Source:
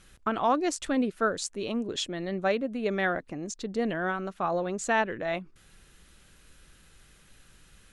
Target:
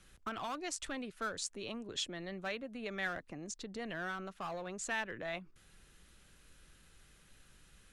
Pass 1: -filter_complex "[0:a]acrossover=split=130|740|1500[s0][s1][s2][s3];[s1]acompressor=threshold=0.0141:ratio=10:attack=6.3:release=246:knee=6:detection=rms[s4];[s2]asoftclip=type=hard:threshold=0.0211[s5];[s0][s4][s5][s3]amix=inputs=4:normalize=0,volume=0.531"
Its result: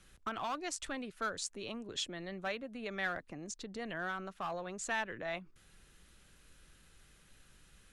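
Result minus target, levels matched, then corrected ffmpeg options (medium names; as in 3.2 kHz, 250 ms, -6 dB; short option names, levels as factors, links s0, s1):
hard clipper: distortion -4 dB
-filter_complex "[0:a]acrossover=split=130|740|1500[s0][s1][s2][s3];[s1]acompressor=threshold=0.0141:ratio=10:attack=6.3:release=246:knee=6:detection=rms[s4];[s2]asoftclip=type=hard:threshold=0.01[s5];[s0][s4][s5][s3]amix=inputs=4:normalize=0,volume=0.531"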